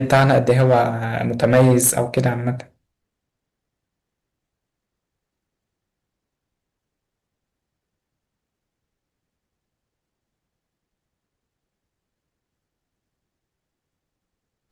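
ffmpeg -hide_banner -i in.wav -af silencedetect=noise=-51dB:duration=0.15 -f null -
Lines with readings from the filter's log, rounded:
silence_start: 2.70
silence_end: 14.72 | silence_duration: 12.02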